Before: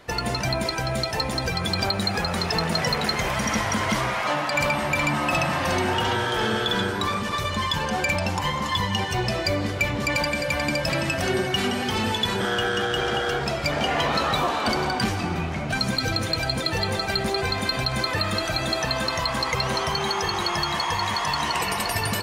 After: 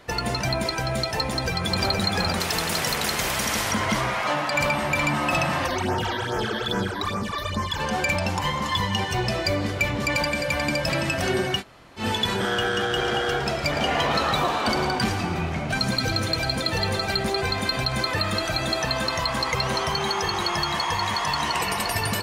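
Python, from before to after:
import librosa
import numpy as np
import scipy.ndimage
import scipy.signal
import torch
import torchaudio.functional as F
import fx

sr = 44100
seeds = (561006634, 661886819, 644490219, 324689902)

y = fx.echo_throw(x, sr, start_s=1.24, length_s=0.61, ms=470, feedback_pct=40, wet_db=-4.0)
y = fx.spectral_comp(y, sr, ratio=2.0, at=(2.4, 3.72))
y = fx.phaser_stages(y, sr, stages=12, low_hz=130.0, high_hz=3800.0, hz=2.4, feedback_pct=25, at=(5.66, 7.78), fade=0.02)
y = fx.echo_single(y, sr, ms=111, db=-11.5, at=(12.81, 17.13))
y = fx.edit(y, sr, fx.room_tone_fill(start_s=11.59, length_s=0.42, crossfade_s=0.1), tone=tone)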